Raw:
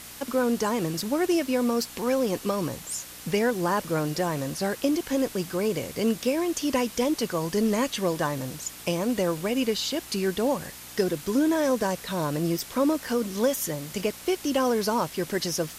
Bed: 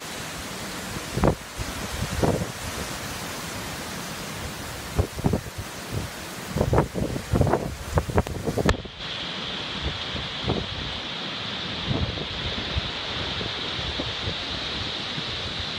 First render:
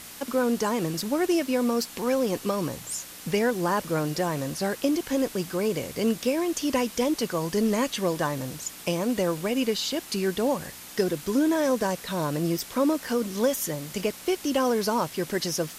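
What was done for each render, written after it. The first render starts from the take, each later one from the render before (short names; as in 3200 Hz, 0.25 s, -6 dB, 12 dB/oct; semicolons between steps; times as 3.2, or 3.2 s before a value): de-hum 60 Hz, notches 2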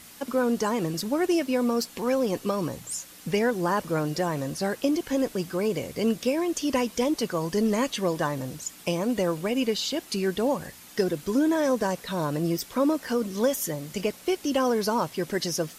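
denoiser 6 dB, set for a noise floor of -43 dBFS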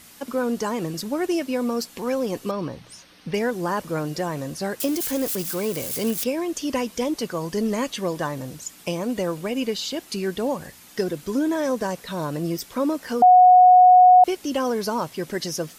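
2.51–3.34 polynomial smoothing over 15 samples; 4.8–6.24 switching spikes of -22 dBFS; 13.22–14.24 bleep 731 Hz -8 dBFS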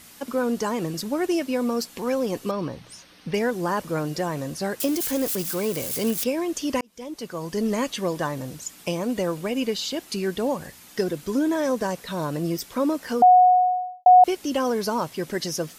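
6.81–7.71 fade in; 13.12–14.06 studio fade out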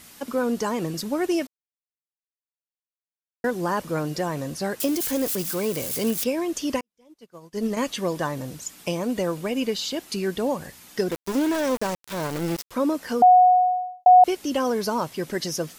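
1.47–3.44 mute; 6.76–7.77 upward expander 2.5:1, over -41 dBFS; 11.11–12.71 sample gate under -27.5 dBFS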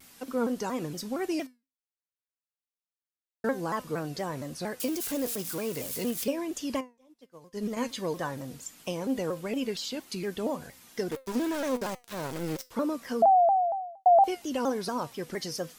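resonator 250 Hz, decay 0.25 s, harmonics all, mix 60%; shaped vibrato saw down 4.3 Hz, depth 160 cents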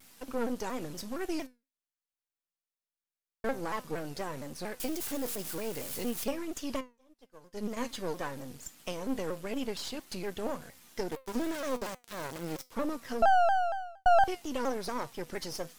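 half-wave gain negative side -12 dB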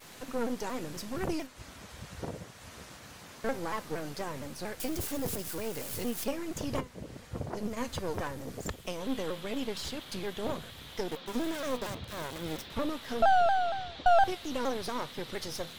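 add bed -17 dB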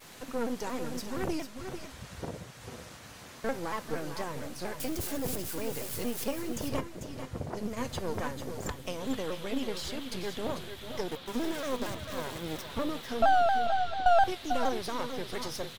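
tapped delay 0.442/0.45 s -11.5/-10.5 dB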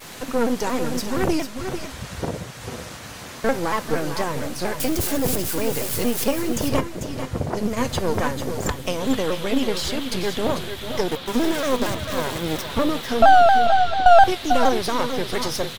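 gain +11.5 dB; limiter -2 dBFS, peak gain reduction 1.5 dB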